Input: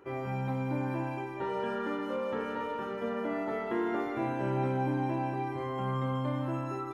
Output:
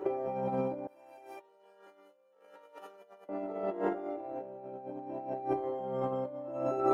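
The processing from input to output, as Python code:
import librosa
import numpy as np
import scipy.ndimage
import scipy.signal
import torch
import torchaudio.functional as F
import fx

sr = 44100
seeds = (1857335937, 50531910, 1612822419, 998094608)

y = fx.band_shelf(x, sr, hz=520.0, db=13.0, octaves=1.7)
y = fx.rev_fdn(y, sr, rt60_s=0.65, lf_ratio=0.7, hf_ratio=0.4, size_ms=31.0, drr_db=-1.0)
y = fx.over_compress(y, sr, threshold_db=-27.0, ratio=-0.5)
y = fx.differentiator(y, sr, at=(0.87, 3.29))
y = y * librosa.db_to_amplitude(-5.5)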